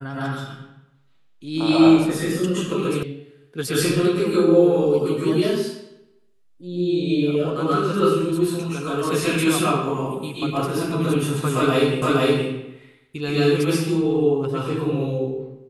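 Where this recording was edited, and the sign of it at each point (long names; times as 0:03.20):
0:03.03: cut off before it has died away
0:12.02: the same again, the last 0.47 s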